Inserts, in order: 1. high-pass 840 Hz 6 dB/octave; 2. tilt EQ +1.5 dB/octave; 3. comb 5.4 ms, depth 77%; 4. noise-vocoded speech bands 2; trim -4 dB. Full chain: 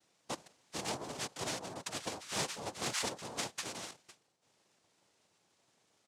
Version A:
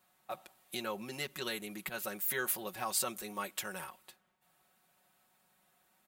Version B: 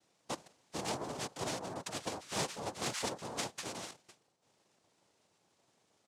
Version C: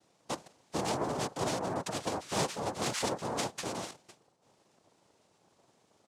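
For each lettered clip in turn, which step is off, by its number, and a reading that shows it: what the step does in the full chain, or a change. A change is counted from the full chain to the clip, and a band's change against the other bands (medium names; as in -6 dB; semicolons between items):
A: 4, 125 Hz band -4.0 dB; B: 2, 4 kHz band -3.5 dB; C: 1, 4 kHz band -7.0 dB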